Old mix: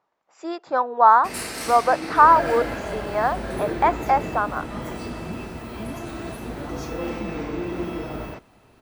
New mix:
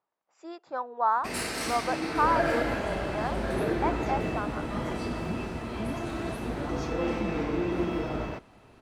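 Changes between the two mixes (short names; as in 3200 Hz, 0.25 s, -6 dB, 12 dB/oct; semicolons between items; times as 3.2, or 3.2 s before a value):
speech -11.5 dB; first sound: add high shelf 9600 Hz -8.5 dB; second sound: add air absorption 79 m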